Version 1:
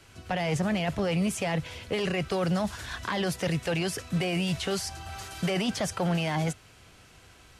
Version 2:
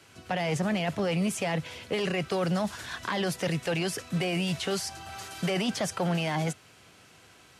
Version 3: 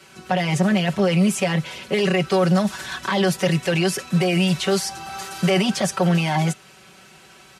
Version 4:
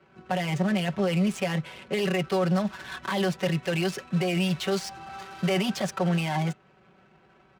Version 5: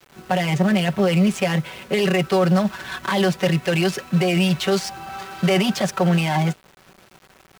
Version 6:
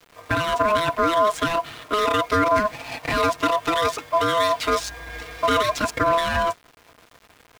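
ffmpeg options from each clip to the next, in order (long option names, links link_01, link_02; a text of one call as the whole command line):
ffmpeg -i in.wav -af "highpass=130" out.wav
ffmpeg -i in.wav -af "aecho=1:1:5.3:0.92,volume=5dB" out.wav
ffmpeg -i in.wav -af "adynamicsmooth=sensitivity=6:basefreq=1200,volume=-6.5dB" out.wav
ffmpeg -i in.wav -af "acrusher=bits=8:mix=0:aa=0.000001,volume=7dB" out.wav
ffmpeg -i in.wav -af "aeval=exprs='val(0)*sin(2*PI*840*n/s)':channel_layout=same,volume=1dB" out.wav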